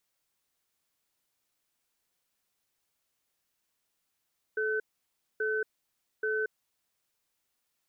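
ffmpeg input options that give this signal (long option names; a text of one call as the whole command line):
ffmpeg -f lavfi -i "aevalsrc='0.0316*(sin(2*PI*433*t)+sin(2*PI*1520*t))*clip(min(mod(t,0.83),0.23-mod(t,0.83))/0.005,0,1)':duration=1.92:sample_rate=44100" out.wav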